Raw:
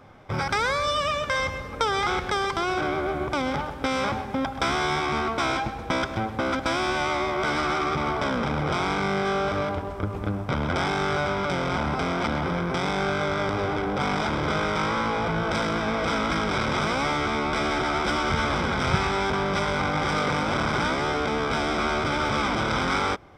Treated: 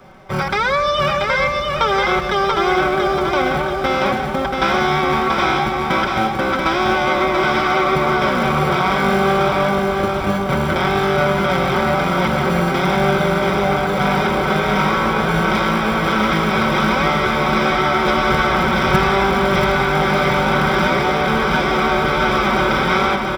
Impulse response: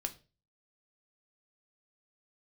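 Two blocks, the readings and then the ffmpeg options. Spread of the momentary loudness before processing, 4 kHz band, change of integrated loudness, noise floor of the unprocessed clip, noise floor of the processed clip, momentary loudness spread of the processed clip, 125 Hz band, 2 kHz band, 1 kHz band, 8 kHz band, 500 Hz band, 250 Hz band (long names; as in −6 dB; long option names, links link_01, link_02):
3 LU, +7.0 dB, +8.5 dB, −35 dBFS, −21 dBFS, 3 LU, +8.0 dB, +9.0 dB, +9.0 dB, +3.5 dB, +9.5 dB, +8.5 dB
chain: -filter_complex "[0:a]acrossover=split=4800[link_01][link_02];[link_02]acompressor=threshold=-57dB:ratio=4:attack=1:release=60[link_03];[link_01][link_03]amix=inputs=2:normalize=0,aecho=1:1:5.3:0.66,acrossover=split=230|990|3200[link_04][link_05][link_06][link_07];[link_04]acrusher=samples=30:mix=1:aa=0.000001[link_08];[link_08][link_05][link_06][link_07]amix=inputs=4:normalize=0,aecho=1:1:684|1368|2052|2736|3420|4104:0.631|0.297|0.139|0.0655|0.0308|0.0145,volume=5.5dB"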